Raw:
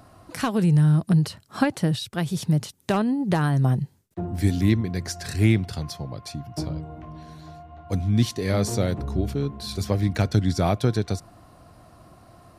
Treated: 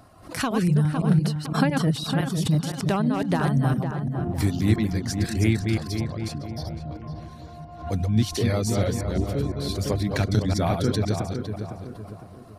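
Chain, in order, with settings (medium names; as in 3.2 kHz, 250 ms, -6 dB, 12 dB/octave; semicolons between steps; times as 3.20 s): chunks repeated in reverse 170 ms, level -3.5 dB; in parallel at -10 dB: saturation -15 dBFS, distortion -15 dB; on the sum: reverb removal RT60 0.53 s; 6.47–6.91 s: static phaser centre 1.7 kHz, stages 8; on a send: filtered feedback delay 508 ms, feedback 42%, low-pass 1.9 kHz, level -7 dB; on the sum: swell ahead of each attack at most 120 dB/s; trim -3.5 dB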